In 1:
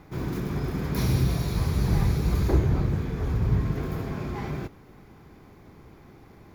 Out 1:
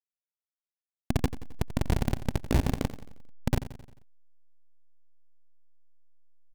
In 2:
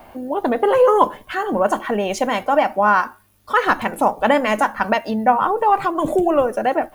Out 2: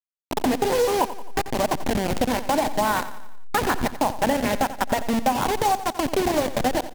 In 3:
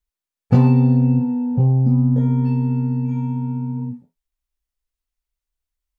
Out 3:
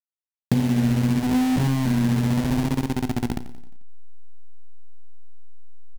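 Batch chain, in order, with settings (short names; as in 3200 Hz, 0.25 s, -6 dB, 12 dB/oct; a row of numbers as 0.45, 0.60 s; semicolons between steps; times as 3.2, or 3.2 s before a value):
level-crossing sampler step -14.5 dBFS; thirty-one-band EQ 250 Hz +7 dB, 800 Hz +3 dB, 1250 Hz -6 dB; compressor 4:1, threshold -19 dBFS; vibrato 0.82 Hz 74 cents; on a send: feedback echo 88 ms, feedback 52%, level -14 dB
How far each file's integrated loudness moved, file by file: -4.5, -5.5, -4.5 LU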